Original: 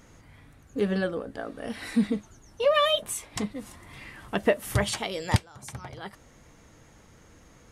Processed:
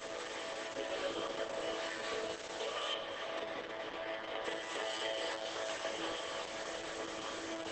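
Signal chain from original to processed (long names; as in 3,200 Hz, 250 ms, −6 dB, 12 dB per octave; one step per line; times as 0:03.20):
compressor on every frequency bin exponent 0.4
Chebyshev high-pass with heavy ripple 270 Hz, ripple 3 dB
resonators tuned to a chord A2 fifth, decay 0.56 s
dynamic equaliser 1,200 Hz, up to −3 dB, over −60 dBFS, Q 7.3
downward compressor 10 to 1, threshold −43 dBFS, peak gain reduction 10.5 dB
mains-hum notches 50/100/150/200/250/300/350/400/450 Hz
four-comb reverb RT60 2.7 s, combs from 26 ms, DRR 3 dB
centre clipping without the shift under −51.5 dBFS
0:02.94–0:04.45: high-frequency loss of the air 190 metres
level +7.5 dB
Opus 10 kbit/s 48,000 Hz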